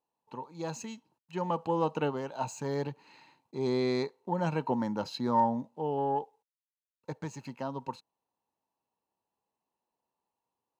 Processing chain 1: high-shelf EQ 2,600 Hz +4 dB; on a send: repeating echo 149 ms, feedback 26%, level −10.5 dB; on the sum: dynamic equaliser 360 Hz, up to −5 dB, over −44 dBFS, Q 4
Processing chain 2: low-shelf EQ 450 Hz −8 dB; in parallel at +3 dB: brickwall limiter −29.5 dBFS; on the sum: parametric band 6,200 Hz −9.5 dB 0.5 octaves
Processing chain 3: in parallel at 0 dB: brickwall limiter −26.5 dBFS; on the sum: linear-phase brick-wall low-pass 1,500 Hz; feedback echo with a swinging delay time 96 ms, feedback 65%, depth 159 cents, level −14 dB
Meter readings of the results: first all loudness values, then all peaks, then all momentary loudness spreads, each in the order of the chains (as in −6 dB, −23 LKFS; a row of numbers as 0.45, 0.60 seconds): −33.0, −31.5, −29.5 LKFS; −14.5, −15.0, −13.0 dBFS; 16, 14, 15 LU